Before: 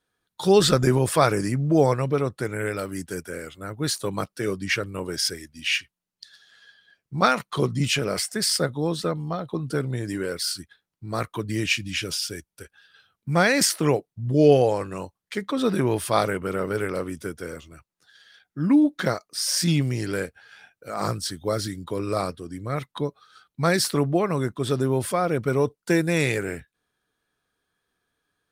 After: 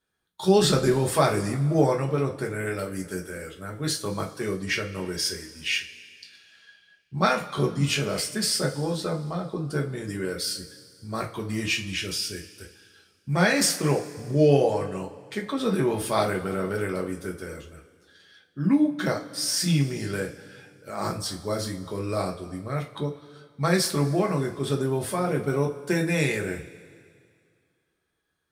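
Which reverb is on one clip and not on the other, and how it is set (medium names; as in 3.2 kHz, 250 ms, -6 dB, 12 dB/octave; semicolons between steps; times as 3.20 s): two-slope reverb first 0.25 s, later 2.2 s, from -20 dB, DRR 0.5 dB; trim -4.5 dB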